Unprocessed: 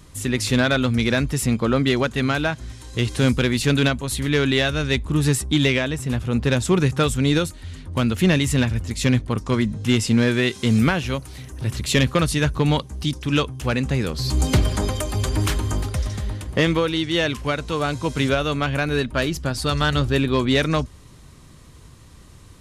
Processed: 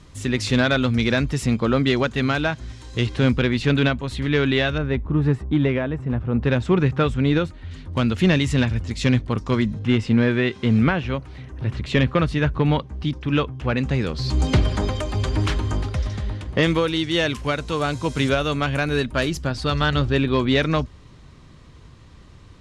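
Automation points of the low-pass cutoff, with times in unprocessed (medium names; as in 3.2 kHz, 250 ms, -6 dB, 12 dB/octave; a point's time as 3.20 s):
6 kHz
from 3.07 s 3.5 kHz
from 4.78 s 1.4 kHz
from 6.43 s 2.6 kHz
from 7.71 s 5.3 kHz
from 9.79 s 2.6 kHz
from 13.77 s 4.6 kHz
from 16.63 s 9.9 kHz
from 19.45 s 4.5 kHz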